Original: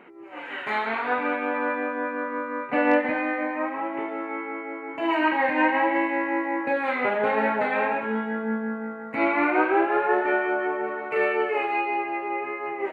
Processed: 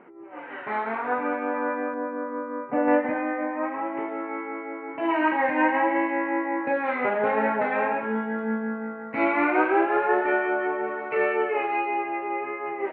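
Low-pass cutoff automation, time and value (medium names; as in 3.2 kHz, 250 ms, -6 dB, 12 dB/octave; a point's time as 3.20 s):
1.5 kHz
from 1.94 s 1 kHz
from 2.88 s 1.5 kHz
from 3.63 s 2.2 kHz
from 8.39 s 3.3 kHz
from 11.15 s 2.5 kHz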